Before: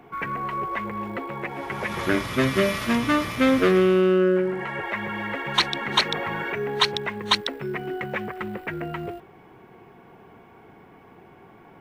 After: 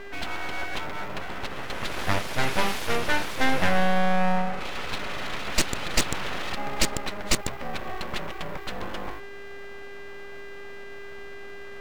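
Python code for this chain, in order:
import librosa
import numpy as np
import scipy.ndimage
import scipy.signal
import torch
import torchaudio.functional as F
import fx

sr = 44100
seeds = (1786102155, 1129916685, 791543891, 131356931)

y = fx.dmg_buzz(x, sr, base_hz=400.0, harmonics=4, level_db=-38.0, tilt_db=-4, odd_only=False)
y = np.abs(y)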